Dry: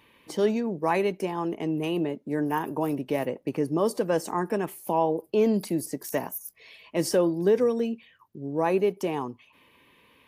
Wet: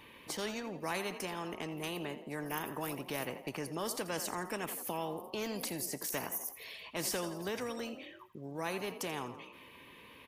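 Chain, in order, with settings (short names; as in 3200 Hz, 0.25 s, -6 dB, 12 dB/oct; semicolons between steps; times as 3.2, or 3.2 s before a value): on a send: frequency-shifting echo 84 ms, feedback 46%, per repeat +35 Hz, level -17.5 dB; on the sum: spectral compressor 2:1; gain -8.5 dB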